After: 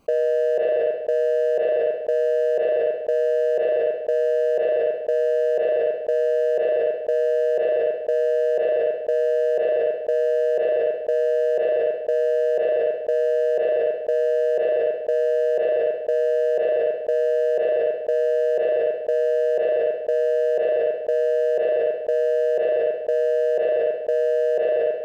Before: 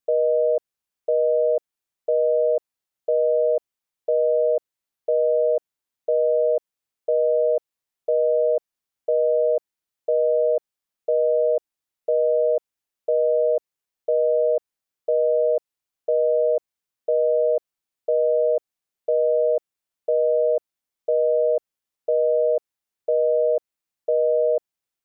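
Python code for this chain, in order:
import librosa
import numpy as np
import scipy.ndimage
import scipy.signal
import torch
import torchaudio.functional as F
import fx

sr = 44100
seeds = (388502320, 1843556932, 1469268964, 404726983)

y = fx.wiener(x, sr, points=25)
y = fx.dereverb_blind(y, sr, rt60_s=0.84)
y = fx.rev_spring(y, sr, rt60_s=1.0, pass_ms=(36, 47), chirp_ms=45, drr_db=14.5)
y = fx.env_flatten(y, sr, amount_pct=100)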